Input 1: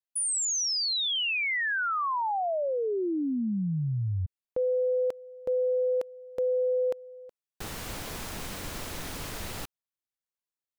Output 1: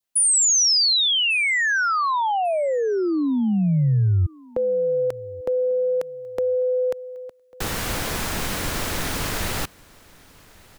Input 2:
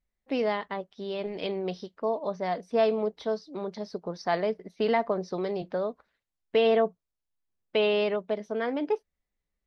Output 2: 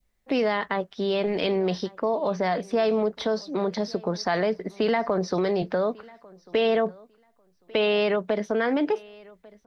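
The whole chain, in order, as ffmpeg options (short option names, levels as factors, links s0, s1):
-filter_complex "[0:a]adynamicequalizer=threshold=0.00501:dfrequency=1600:dqfactor=1.7:tfrequency=1600:tqfactor=1.7:attack=5:release=100:ratio=0.375:range=2.5:mode=boostabove:tftype=bell,asplit=2[s0][s1];[s1]alimiter=level_in=1.06:limit=0.0631:level=0:latency=1:release=35,volume=0.944,volume=1.33[s2];[s0][s2]amix=inputs=2:normalize=0,acrossover=split=150|4700[s3][s4][s5];[s4]acompressor=threshold=0.0501:ratio=2.5:attack=4.4:release=113:knee=2.83:detection=peak[s6];[s3][s6][s5]amix=inputs=3:normalize=0,aecho=1:1:1146|2292:0.0631|0.0107,volume=1.5"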